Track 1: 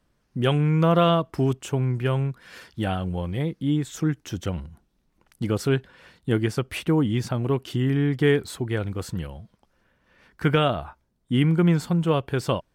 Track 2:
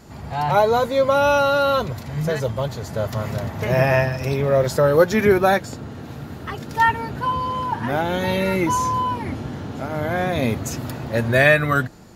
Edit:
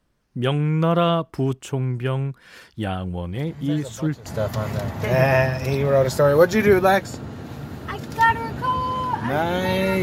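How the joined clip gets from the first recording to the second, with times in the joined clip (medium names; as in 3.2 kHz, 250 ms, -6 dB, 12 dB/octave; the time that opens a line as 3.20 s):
track 1
3.35 s: add track 2 from 1.94 s 0.91 s -12.5 dB
4.26 s: go over to track 2 from 2.85 s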